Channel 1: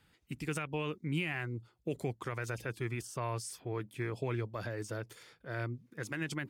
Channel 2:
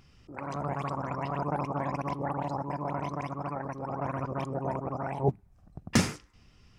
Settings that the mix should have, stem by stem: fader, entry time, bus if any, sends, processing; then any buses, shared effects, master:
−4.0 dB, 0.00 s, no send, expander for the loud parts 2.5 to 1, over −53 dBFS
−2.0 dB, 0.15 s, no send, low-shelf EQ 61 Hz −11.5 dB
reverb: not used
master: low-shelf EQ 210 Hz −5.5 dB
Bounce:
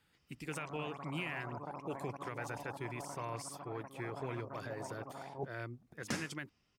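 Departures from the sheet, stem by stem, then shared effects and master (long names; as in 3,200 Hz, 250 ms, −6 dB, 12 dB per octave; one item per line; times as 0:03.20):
stem 1: missing expander for the loud parts 2.5 to 1, over −53 dBFS
stem 2 −2.0 dB → −12.5 dB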